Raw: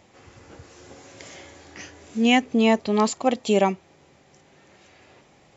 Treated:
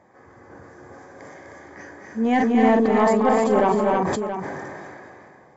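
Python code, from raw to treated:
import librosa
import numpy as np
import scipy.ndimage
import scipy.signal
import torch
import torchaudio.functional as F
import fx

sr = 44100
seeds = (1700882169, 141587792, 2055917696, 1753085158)

y = fx.reverse_delay(x, sr, ms=393, wet_db=-6, at=(1.33, 3.72))
y = fx.high_shelf_res(y, sr, hz=2100.0, db=-11.0, q=3.0)
y = fx.notch_comb(y, sr, f0_hz=1400.0)
y = 10.0 ** (-11.5 / 20.0) * np.tanh(y / 10.0 ** (-11.5 / 20.0))
y = fx.echo_multitap(y, sr, ms=(45, 222, 251, 310, 678), db=(-11.5, -9.5, -5.5, -5.5, -13.0))
y = fx.sustainer(y, sr, db_per_s=21.0)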